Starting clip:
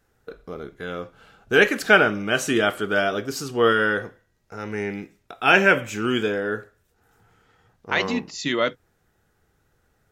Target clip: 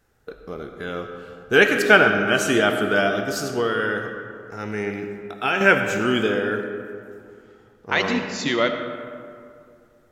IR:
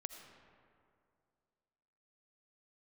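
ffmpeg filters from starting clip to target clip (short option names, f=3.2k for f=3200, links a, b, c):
-filter_complex "[0:a]asettb=1/sr,asplit=3[a][b][c];[a]atrim=end=3.074[d];[b]atrim=start=3.07:end=5.61,asetpts=PTS-STARTPTS,afade=t=in:d=0.004:c=qsin,afade=t=out:st=2.536:d=0.004:c=qsin,acompressor=threshold=-22dB:ratio=4[e];[c]atrim=start=5.606[f];[d][e]acrossfade=d=0.004:c1=hsin:c2=qsin[g];[g][f]acrossfade=d=0.004:c1=qsin:c2=hsin[h];[1:a]atrim=start_sample=2205[i];[h][i]afir=irnorm=-1:irlink=0,volume=5.5dB"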